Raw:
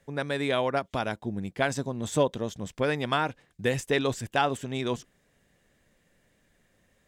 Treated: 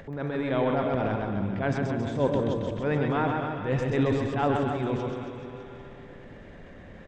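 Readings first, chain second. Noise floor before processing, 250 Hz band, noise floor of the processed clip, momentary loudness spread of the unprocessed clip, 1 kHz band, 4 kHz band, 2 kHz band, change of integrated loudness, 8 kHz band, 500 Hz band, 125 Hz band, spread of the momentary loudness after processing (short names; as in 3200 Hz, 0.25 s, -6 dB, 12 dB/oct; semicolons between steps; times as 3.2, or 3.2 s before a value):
-69 dBFS, +4.5 dB, -46 dBFS, 7 LU, 0.0 dB, -8.5 dB, -3.5 dB, +1.5 dB, under -10 dB, +1.5 dB, +5.5 dB, 21 LU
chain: Schroeder reverb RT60 2.4 s, combs from 28 ms, DRR 14.5 dB; transient shaper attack -11 dB, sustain +7 dB; upward compressor, threshold -32 dBFS; tape spacing loss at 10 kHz 36 dB; on a send: reverse bouncing-ball echo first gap 0.13 s, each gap 1.1×, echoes 5; on the sum: gain +3 dB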